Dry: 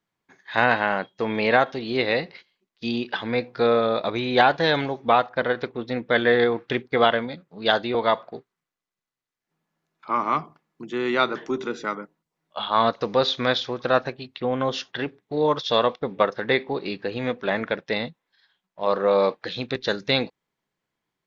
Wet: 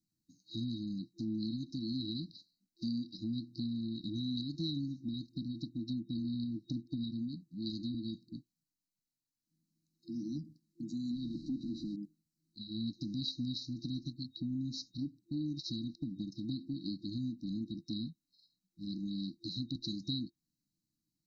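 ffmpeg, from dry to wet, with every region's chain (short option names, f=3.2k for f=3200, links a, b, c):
-filter_complex "[0:a]asettb=1/sr,asplit=3[a][b][c];[a]atrim=end=11.114[d];[b]atrim=start=11.11:end=11.96,asetpts=PTS-STARTPTS,afade=t=in:d=0.004:c=qsin,afade=t=out:st=0.846:d=0.004:c=qsin,aeval=exprs='val(0)+0.5*0.0211*sgn(val(0))':c=same,lowpass=f=3.6k:w=0.5412,lowpass=f=3.6k:w=1.3066[e];[c]atrim=start=11.956[f];[d][e]acrossfade=d=0.004:c1=hsin:c2=qsin[g];[g][f]acrossfade=d=0.004:c1=qsin:c2=hsin,acrossover=split=5600[h][i];[i]acompressor=threshold=-55dB:ratio=4:attack=1:release=60[j];[h][j]amix=inputs=2:normalize=0,afftfilt=real='re*(1-between(b*sr/4096,340,3800))':imag='im*(1-between(b*sr/4096,340,3800))':win_size=4096:overlap=0.75,acompressor=threshold=-36dB:ratio=2.5,volume=-1dB"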